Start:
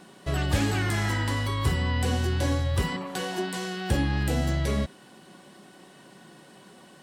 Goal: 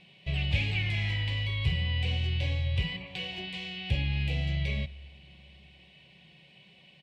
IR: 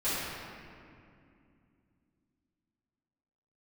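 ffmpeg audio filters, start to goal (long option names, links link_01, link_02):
-filter_complex "[0:a]firequalizer=gain_entry='entry(160,0);entry(250,-17);entry(570,-8);entry(1400,-22);entry(2300,10);entry(6000,-16);entry(10000,-25)':delay=0.05:min_phase=1,asplit=2[link_01][link_02];[1:a]atrim=start_sample=2205[link_03];[link_02][link_03]afir=irnorm=-1:irlink=0,volume=-30dB[link_04];[link_01][link_04]amix=inputs=2:normalize=0,volume=-2.5dB"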